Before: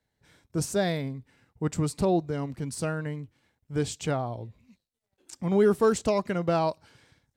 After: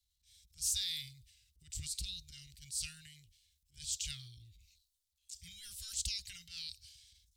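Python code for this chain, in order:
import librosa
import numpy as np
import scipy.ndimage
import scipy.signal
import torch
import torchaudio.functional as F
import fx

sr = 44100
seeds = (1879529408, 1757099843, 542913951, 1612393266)

y = scipy.signal.sosfilt(scipy.signal.cheby2(4, 70, [230.0, 990.0], 'bandstop', fs=sr, output='sos'), x)
y = fx.wow_flutter(y, sr, seeds[0], rate_hz=2.1, depth_cents=27.0)
y = fx.transient(y, sr, attack_db=-10, sustain_db=6)
y = y * librosa.db_to_amplitude(4.0)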